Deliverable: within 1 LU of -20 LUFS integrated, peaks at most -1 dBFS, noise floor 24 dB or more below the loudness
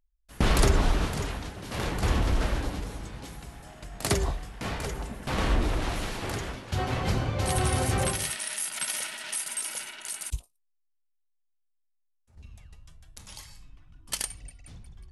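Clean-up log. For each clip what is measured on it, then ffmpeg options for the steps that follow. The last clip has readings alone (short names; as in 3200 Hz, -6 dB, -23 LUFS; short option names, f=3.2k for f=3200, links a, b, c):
loudness -29.5 LUFS; peak -11.0 dBFS; loudness target -20.0 LUFS
-> -af "volume=9.5dB"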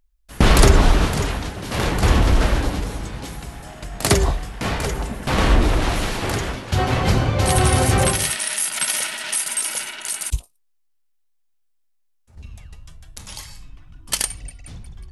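loudness -20.0 LUFS; peak -1.5 dBFS; noise floor -64 dBFS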